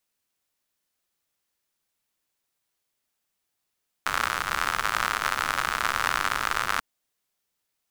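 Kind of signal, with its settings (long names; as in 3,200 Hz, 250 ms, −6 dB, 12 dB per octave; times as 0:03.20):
rain-like ticks over hiss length 2.74 s, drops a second 95, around 1,300 Hz, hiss −13.5 dB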